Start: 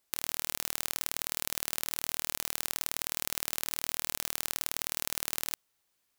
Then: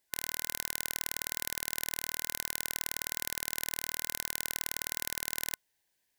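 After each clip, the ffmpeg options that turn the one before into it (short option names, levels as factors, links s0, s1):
-af "superequalizer=10b=0.316:11b=1.58,volume=0.841"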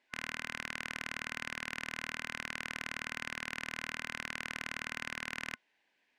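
-filter_complex "[0:a]adynamicsmooth=sensitivity=7:basefreq=4700,equalizer=f=100:t=o:w=0.67:g=-5,equalizer=f=250:t=o:w=0.67:g=9,equalizer=f=2500:t=o:w=0.67:g=7,asplit=2[s0][s1];[s1]highpass=f=720:p=1,volume=7.94,asoftclip=type=tanh:threshold=0.266[s2];[s0][s2]amix=inputs=2:normalize=0,lowpass=f=2100:p=1,volume=0.501,volume=0.75"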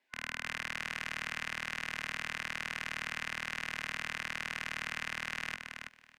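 -filter_complex "[0:a]acrossover=split=210|480|3900[s0][s1][s2][s3];[s1]alimiter=level_in=39.8:limit=0.0631:level=0:latency=1,volume=0.0251[s4];[s0][s4][s2][s3]amix=inputs=4:normalize=0,aecho=1:1:328|656|984:0.531|0.0849|0.0136,dynaudnorm=f=120:g=3:m=1.58,volume=0.708"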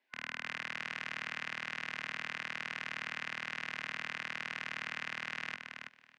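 -af "highpass=130,lowpass=5000,volume=0.841"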